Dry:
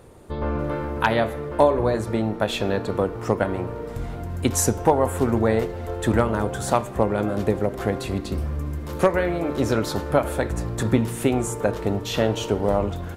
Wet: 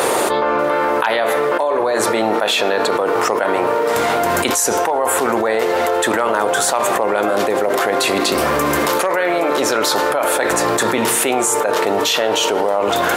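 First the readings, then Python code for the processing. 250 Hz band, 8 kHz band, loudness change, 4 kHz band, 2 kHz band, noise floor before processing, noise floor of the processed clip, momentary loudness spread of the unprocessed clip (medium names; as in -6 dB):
+1.5 dB, +12.0 dB, +7.0 dB, +14.0 dB, +12.0 dB, -33 dBFS, -18 dBFS, 8 LU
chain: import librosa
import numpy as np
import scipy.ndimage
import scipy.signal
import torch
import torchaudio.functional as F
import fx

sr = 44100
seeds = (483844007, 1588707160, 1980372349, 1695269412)

y = scipy.signal.sosfilt(scipy.signal.butter(2, 590.0, 'highpass', fs=sr, output='sos'), x)
y = fx.env_flatten(y, sr, amount_pct=100)
y = F.gain(torch.from_numpy(y), -1.0).numpy()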